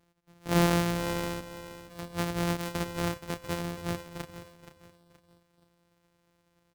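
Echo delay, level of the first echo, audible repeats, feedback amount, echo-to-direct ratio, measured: 0.474 s, -12.5 dB, 3, 33%, -12.0 dB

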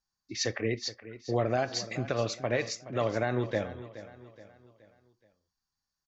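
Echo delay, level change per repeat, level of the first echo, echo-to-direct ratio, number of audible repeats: 0.423 s, -7.0 dB, -15.0 dB, -14.0 dB, 3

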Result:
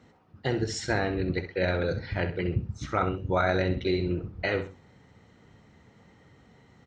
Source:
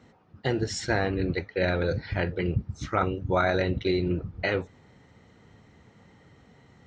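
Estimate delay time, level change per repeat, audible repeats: 65 ms, -10.0 dB, 2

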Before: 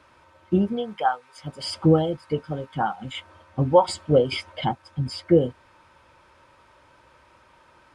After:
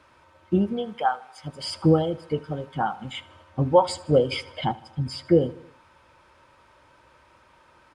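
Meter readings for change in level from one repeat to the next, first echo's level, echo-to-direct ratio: -5.0 dB, -20.5 dB, -19.0 dB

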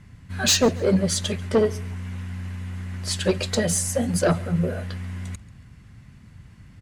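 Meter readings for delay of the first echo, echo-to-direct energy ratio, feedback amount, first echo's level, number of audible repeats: 0.139 s, -22.5 dB, 31%, -23.0 dB, 2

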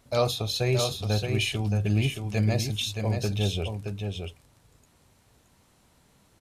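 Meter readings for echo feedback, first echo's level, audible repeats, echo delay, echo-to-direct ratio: no steady repeat, -5.5 dB, 1, 0.622 s, -5.5 dB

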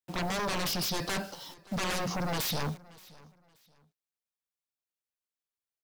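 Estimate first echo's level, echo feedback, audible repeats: -22.5 dB, 28%, 2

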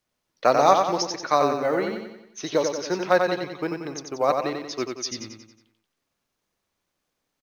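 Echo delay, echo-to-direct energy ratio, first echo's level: 91 ms, -4.0 dB, -5.0 dB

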